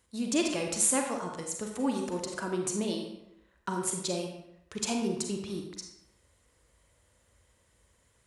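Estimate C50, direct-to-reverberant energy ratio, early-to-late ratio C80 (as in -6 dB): 4.0 dB, 2.0 dB, 6.5 dB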